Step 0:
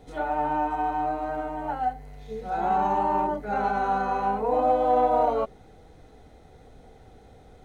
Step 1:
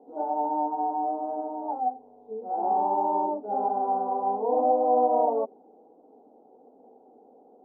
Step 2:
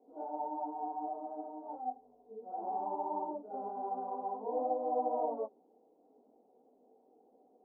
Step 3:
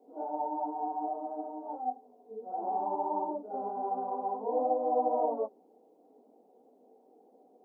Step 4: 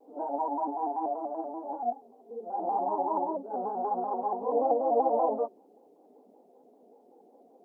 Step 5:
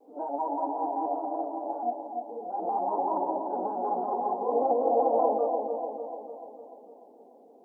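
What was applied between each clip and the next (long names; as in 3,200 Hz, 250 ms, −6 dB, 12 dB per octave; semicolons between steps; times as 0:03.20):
elliptic band-pass filter 240–900 Hz, stop band 40 dB
notch filter 830 Hz, Q 14; micro pitch shift up and down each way 33 cents; level −7.5 dB
elliptic high-pass filter 170 Hz; level +5 dB
pitch modulation by a square or saw wave square 5.2 Hz, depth 100 cents; level +3 dB
delay with a band-pass on its return 296 ms, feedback 56%, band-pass 440 Hz, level −3.5 dB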